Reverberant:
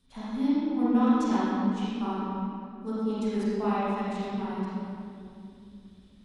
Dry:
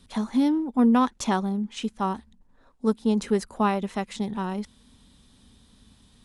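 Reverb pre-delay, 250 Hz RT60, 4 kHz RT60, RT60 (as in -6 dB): 34 ms, 3.8 s, 1.7 s, 2.6 s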